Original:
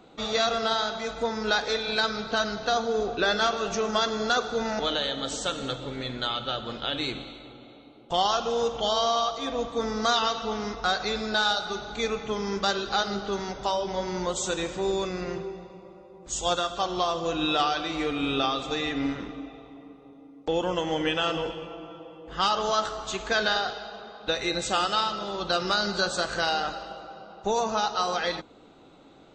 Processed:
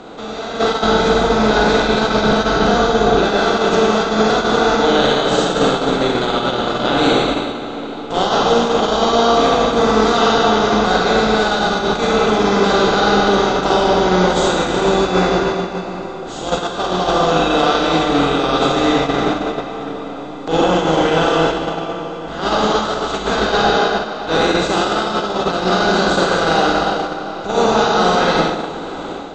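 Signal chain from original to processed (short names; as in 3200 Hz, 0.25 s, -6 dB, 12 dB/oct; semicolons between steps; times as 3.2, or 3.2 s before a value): per-bin compression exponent 0.4; LPF 7400 Hz 12 dB/oct; tilt shelf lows +5 dB, about 850 Hz; narrowing echo 0.289 s, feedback 77%, band-pass 990 Hz, level -13 dB; limiter -11 dBFS, peak gain reduction 6 dB; Schroeder reverb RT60 1.3 s, DRR -0.5 dB; AGC gain up to 13 dB; 0.83–3.19 low shelf 140 Hz +8 dB; gate -13 dBFS, range -8 dB; gain -1.5 dB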